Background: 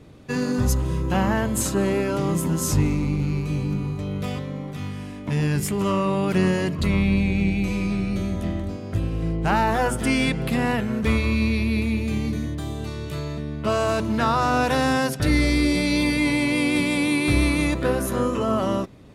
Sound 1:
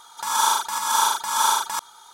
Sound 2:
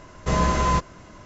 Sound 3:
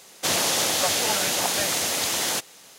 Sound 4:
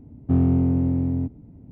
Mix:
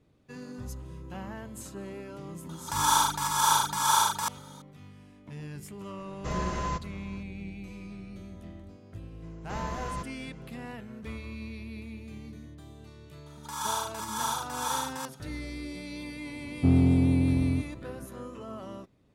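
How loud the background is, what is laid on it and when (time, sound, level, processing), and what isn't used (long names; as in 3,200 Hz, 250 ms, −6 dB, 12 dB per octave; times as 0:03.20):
background −18.5 dB
0:02.49: mix in 1 −3.5 dB
0:05.98: mix in 2 −11 dB + single-tap delay 420 ms −23 dB
0:09.23: mix in 2 −15 dB
0:13.26: mix in 1 −11.5 dB
0:16.34: mix in 4 −2.5 dB
not used: 3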